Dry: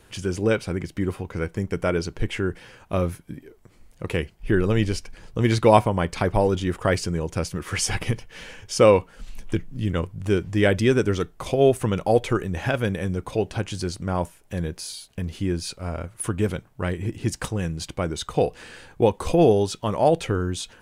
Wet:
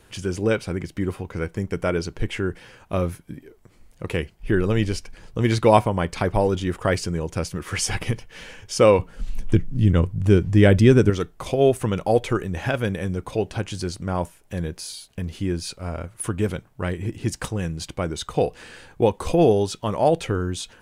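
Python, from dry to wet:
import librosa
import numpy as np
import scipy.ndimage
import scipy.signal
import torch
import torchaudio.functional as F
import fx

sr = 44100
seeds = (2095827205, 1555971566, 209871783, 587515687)

y = fx.low_shelf(x, sr, hz=300.0, db=10.0, at=(8.99, 11.1))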